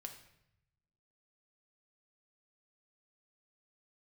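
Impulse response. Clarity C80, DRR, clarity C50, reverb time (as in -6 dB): 11.5 dB, 3.0 dB, 9.0 dB, 0.80 s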